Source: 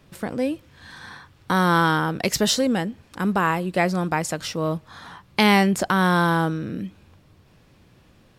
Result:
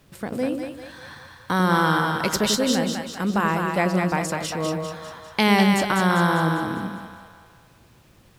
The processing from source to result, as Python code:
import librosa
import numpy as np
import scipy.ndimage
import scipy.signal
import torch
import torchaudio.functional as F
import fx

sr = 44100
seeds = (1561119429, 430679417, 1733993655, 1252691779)

y = fx.quant_dither(x, sr, seeds[0], bits=10, dither='none')
y = fx.echo_split(y, sr, split_hz=560.0, low_ms=91, high_ms=199, feedback_pct=52, wet_db=-4.0)
y = y * 10.0 ** (-2.0 / 20.0)